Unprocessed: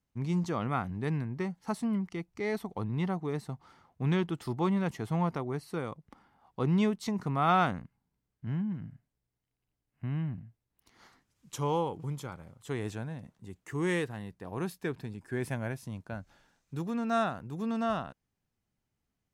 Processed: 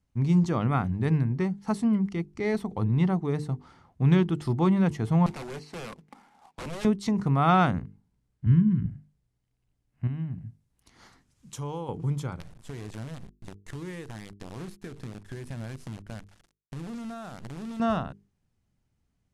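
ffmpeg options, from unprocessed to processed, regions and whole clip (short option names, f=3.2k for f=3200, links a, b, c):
-filter_complex "[0:a]asettb=1/sr,asplit=3[a][b][c];[a]atrim=end=5.264[d];[b]atrim=start=5.26:end=6.85,asetpts=PTS-STARTPTS,afade=t=in:d=0.004:c=qsin,afade=t=out:st=1.586:d=0.004:c=qsin,highpass=f=200:w=0.5412,highpass=f=200:w=1.3066,equalizer=f=320:t=q:w=4:g=-6,equalizer=f=810:t=q:w=4:g=6,equalizer=f=2.3k:t=q:w=4:g=7,lowpass=f=7.1k:w=0.5412,lowpass=f=7.1k:w=1.3066,acrusher=bits=2:mode=log:mix=0:aa=0.000001,aeval=exprs='0.0168*(abs(mod(val(0)/0.0168+3,4)-2)-1)':c=same[e];[c]atrim=start=6.846[f];[d][e]acrossfade=d=0.004:c1=hsin:c2=qsin[g];[g][f]acrossfade=d=0.004:c1=qsin:c2=hsin,asettb=1/sr,asplit=3[h][i][j];[h]atrim=end=8.464[k];[i]atrim=start=8.46:end=8.86,asetpts=PTS-STARTPTS,afade=t=in:d=0.004:c=qsin,afade=t=out:st=0.396:d=0.004:c=qsin,asuperstop=centerf=660:order=20:qfactor=1.3,lowshelf=f=120:g=12[l];[j]atrim=start=8.856[m];[k][l]acrossfade=d=0.004:c1=hsin:c2=qsin[n];[n][m]acrossfade=d=0.004:c1=qsin:c2=hsin,asettb=1/sr,asplit=3[o][p][q];[o]atrim=end=10.074[r];[p]atrim=start=10.07:end=11.89,asetpts=PTS-STARTPTS,afade=t=in:d=0.004:c=qsin,afade=t=out:st=1.816:d=0.004:c=qsin,highshelf=f=5.9k:g=6.5,acompressor=threshold=-44dB:ratio=2:attack=3.2:release=140:knee=1:detection=peak[s];[q]atrim=start=11.886[t];[r][s]acrossfade=d=0.004:c1=hsin:c2=qsin[u];[u][t]acrossfade=d=0.004:c1=qsin:c2=hsin,asettb=1/sr,asplit=3[v][w][x];[v]atrim=end=12.404[y];[w]atrim=start=12.4:end=17.8,asetpts=PTS-STARTPTS,afade=t=in:d=0.004:c=qsin,afade=t=out:st=5.396:d=0.004:c=qsin,acrusher=bits=7:dc=4:mix=0:aa=0.000001,acompressor=threshold=-41dB:ratio=8:attack=3.2:release=140:knee=1:detection=peak[z];[x]atrim=start=17.796[aa];[y][z]acrossfade=d=0.004:c1=hsin:c2=qsin[ab];[ab][aa]acrossfade=d=0.004:c1=qsin:c2=hsin,lowpass=f=11k:w=0.5412,lowpass=f=11k:w=1.3066,lowshelf=f=230:g=10,bandreject=f=50:t=h:w=6,bandreject=f=100:t=h:w=6,bandreject=f=150:t=h:w=6,bandreject=f=200:t=h:w=6,bandreject=f=250:t=h:w=6,bandreject=f=300:t=h:w=6,bandreject=f=350:t=h:w=6,bandreject=f=400:t=h:w=6,bandreject=f=450:t=h:w=6,volume=2.5dB"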